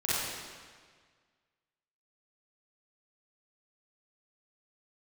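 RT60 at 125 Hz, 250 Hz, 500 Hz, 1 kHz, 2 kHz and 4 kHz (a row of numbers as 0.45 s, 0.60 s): 1.8 s, 1.7 s, 1.7 s, 1.7 s, 1.6 s, 1.5 s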